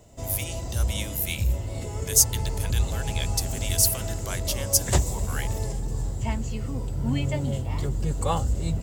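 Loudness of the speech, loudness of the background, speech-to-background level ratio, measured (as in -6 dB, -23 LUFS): -26.0 LUFS, -29.0 LUFS, 3.0 dB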